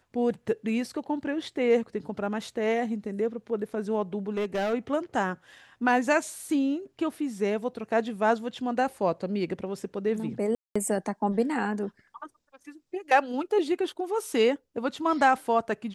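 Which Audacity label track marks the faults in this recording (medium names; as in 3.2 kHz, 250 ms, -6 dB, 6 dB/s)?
4.370000	4.740000	clipped -24.5 dBFS
10.550000	10.760000	dropout 205 ms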